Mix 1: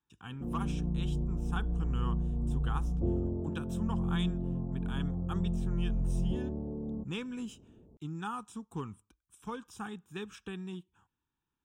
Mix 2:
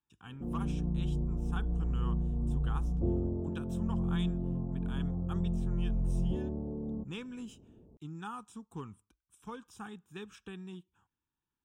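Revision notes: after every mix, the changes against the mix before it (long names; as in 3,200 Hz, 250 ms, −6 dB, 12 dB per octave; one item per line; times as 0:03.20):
speech −4.0 dB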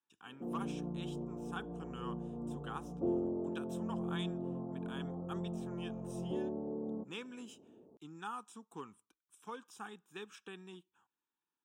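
background +3.5 dB
master: add high-pass filter 320 Hz 12 dB per octave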